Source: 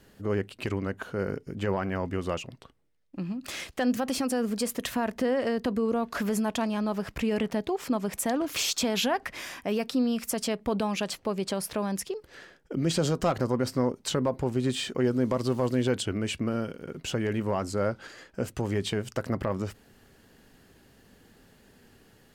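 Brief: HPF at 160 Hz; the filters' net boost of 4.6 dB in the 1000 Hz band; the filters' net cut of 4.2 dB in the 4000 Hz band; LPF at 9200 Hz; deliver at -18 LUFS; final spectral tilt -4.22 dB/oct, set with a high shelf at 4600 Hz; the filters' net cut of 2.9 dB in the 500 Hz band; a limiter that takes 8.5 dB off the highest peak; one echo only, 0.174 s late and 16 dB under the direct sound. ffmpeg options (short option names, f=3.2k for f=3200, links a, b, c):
-af "highpass=160,lowpass=9.2k,equalizer=f=500:t=o:g=-5.5,equalizer=f=1k:t=o:g=8,equalizer=f=4k:t=o:g=-8.5,highshelf=f=4.6k:g=4.5,alimiter=limit=-20dB:level=0:latency=1,aecho=1:1:174:0.158,volume=14.5dB"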